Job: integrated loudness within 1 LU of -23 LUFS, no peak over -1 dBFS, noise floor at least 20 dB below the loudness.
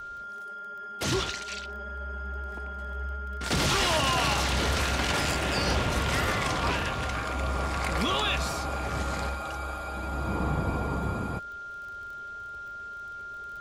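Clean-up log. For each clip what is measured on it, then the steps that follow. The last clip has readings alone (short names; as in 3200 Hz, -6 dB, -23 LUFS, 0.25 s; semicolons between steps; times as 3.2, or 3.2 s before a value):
ticks 20/s; steady tone 1400 Hz; tone level -37 dBFS; loudness -29.5 LUFS; peak -15.0 dBFS; loudness target -23.0 LUFS
-> de-click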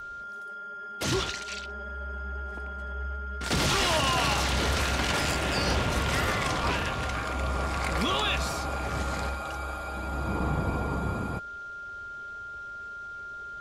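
ticks 0.073/s; steady tone 1400 Hz; tone level -37 dBFS
-> notch 1400 Hz, Q 30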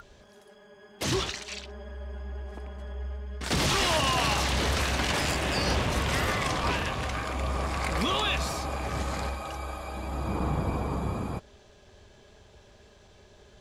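steady tone none; loudness -29.0 LUFS; peak -15.5 dBFS; loudness target -23.0 LUFS
-> gain +6 dB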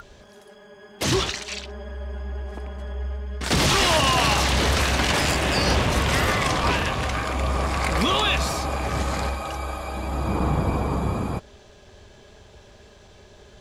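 loudness -23.0 LUFS; peak -9.5 dBFS; noise floor -50 dBFS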